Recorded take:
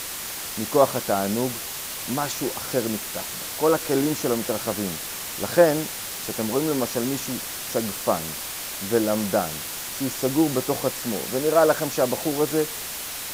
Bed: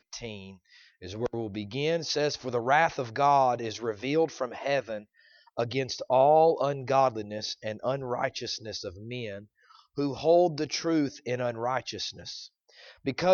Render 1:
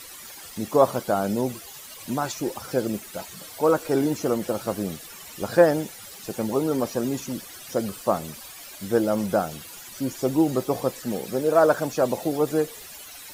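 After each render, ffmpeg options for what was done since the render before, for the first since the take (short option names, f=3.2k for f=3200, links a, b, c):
-af "afftdn=nr=14:nf=-33"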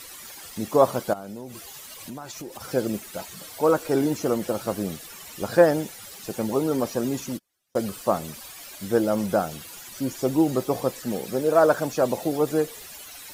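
-filter_complex "[0:a]asettb=1/sr,asplit=3[a][b][c];[a]atrim=end=1.134[d];[b]atrim=start=1.13:end=2.61,asetpts=PTS-STARTPTS,afade=t=in:d=0.004:c=qsin,afade=t=out:st=1.476:d=0.004:c=qsin,acompressor=threshold=-34dB:ratio=5:attack=3.2:release=140:knee=1:detection=peak[e];[c]atrim=start=2.606[f];[d][e]acrossfade=d=0.004:c1=hsin:c2=qsin[g];[g][f]acrossfade=d=0.004:c1=qsin:c2=hsin,asplit=3[h][i][j];[h]afade=t=out:st=7.3:d=0.02[k];[i]agate=range=-36dB:threshold=-31dB:ratio=16:release=100:detection=peak,afade=t=in:st=7.3:d=0.02,afade=t=out:st=7.78:d=0.02[l];[j]afade=t=in:st=7.78:d=0.02[m];[k][l][m]amix=inputs=3:normalize=0"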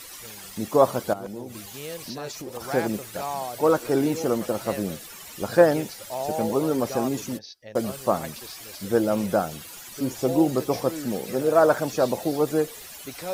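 -filter_complex "[1:a]volume=-9dB[a];[0:a][a]amix=inputs=2:normalize=0"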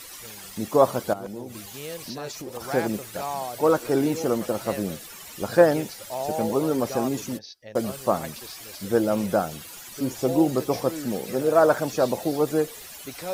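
-af anull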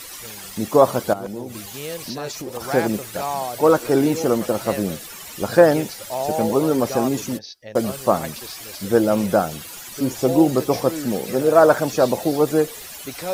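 -af "volume=5dB,alimiter=limit=-1dB:level=0:latency=1"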